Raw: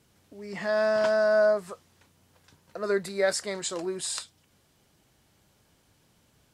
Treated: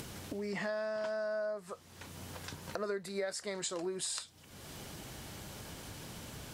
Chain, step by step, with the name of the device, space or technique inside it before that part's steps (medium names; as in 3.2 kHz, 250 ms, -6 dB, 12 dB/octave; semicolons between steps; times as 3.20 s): upward and downward compression (upward compressor, threshold -35 dBFS; compression 8:1, threshold -37 dBFS, peak gain reduction 18 dB); trim +2.5 dB